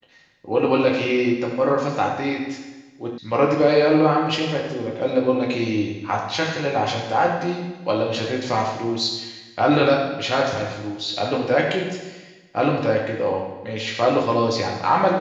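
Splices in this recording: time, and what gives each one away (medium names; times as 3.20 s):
3.18 s: sound stops dead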